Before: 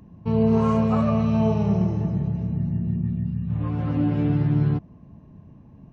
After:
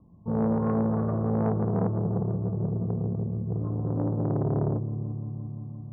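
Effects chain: steep low-pass 1.2 kHz 96 dB/octave; de-hum 66.78 Hz, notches 10; dynamic bell 190 Hz, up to +6 dB, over -33 dBFS, Q 1; multi-head delay 173 ms, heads first and second, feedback 73%, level -14 dB; transformer saturation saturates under 490 Hz; trim -7.5 dB

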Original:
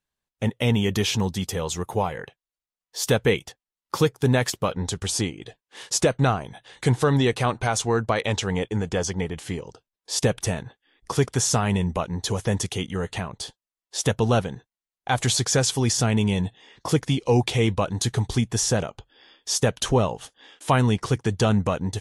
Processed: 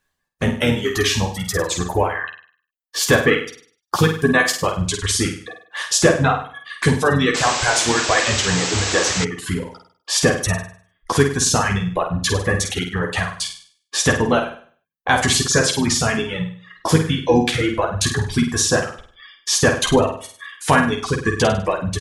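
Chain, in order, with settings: in parallel at +3 dB: compression 16:1, threshold -34 dBFS, peak gain reduction 21 dB; on the sum: reverb removal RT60 1.5 s; doubling 12 ms -4.5 dB; reverb removal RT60 1.9 s; peaking EQ 1.7 kHz +10.5 dB 0.27 oct; on a send: flutter echo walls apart 8.6 m, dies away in 0.47 s; on the sum: painted sound noise, 7.34–9.25 s, 220–8200 Hz -26 dBFS; harmony voices -7 st -10 dB; trim +2 dB

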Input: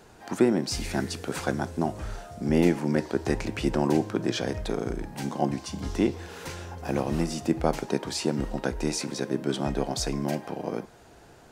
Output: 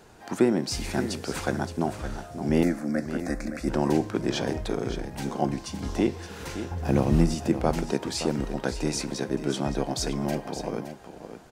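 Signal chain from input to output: 2.63–3.68 s: static phaser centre 610 Hz, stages 8; 6.71–7.35 s: bass shelf 250 Hz +11 dB; delay 568 ms -10.5 dB

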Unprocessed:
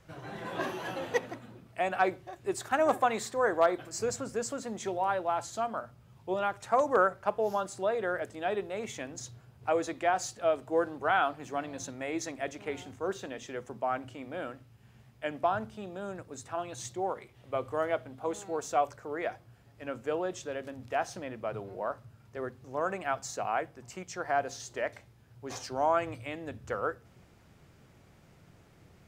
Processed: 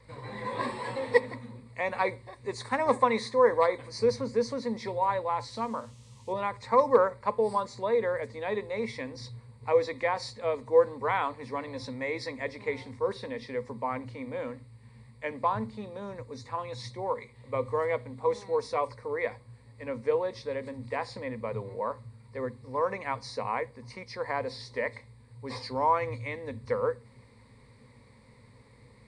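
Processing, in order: knee-point frequency compression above 4 kHz 1.5:1; rippled EQ curve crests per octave 0.96, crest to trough 16 dB; 5.47–6.32 s: band noise 2.5–8.9 kHz -63 dBFS

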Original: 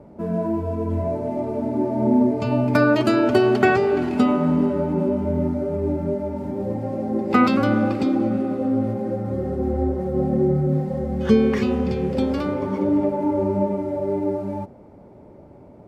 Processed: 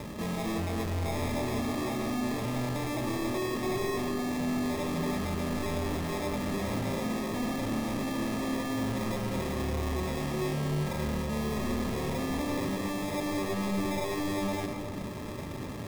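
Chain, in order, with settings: bass shelf 360 Hz +7.5 dB; reverse; compression, threshold -24 dBFS, peak gain reduction 17 dB; reverse; sample-and-hold 30×; hard clipper -33 dBFS, distortion -6 dB; reverberation RT60 1.9 s, pre-delay 60 ms, DRR 5.5 dB; trim +1.5 dB

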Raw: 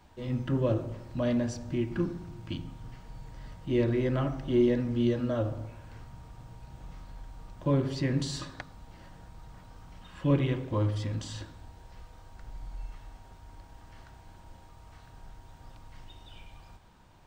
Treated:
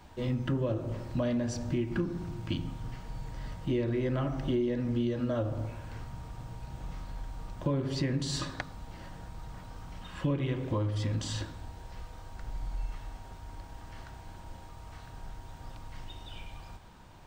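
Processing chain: compression 6:1, threshold -32 dBFS, peak gain reduction 12.5 dB; trim +5 dB

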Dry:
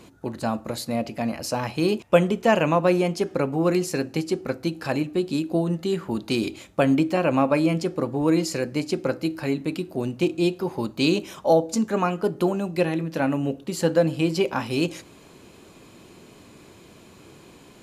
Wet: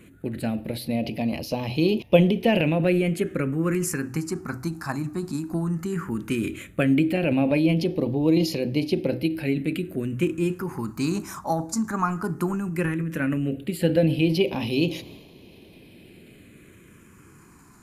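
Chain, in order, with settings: de-hum 63.47 Hz, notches 2; transient shaper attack +3 dB, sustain +7 dB; phase shifter stages 4, 0.15 Hz, lowest notch 500–1400 Hz

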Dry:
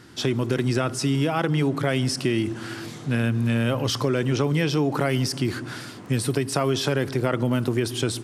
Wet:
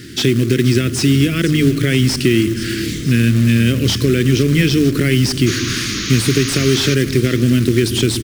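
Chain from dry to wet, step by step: high-order bell 840 Hz -14.5 dB; hum notches 50/100/150 Hz; in parallel at +2.5 dB: compression 10:1, threshold -31 dBFS, peak gain reduction 13 dB; on the sum: short-mantissa float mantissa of 2-bit; painted sound noise, 5.46–6.95 s, 1–6.9 kHz -32 dBFS; Butterworth band-stop 850 Hz, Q 1.5; frequency-shifting echo 478 ms, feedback 56%, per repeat -35 Hz, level -16 dB; slew-rate limiter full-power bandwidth 320 Hz; trim +7.5 dB

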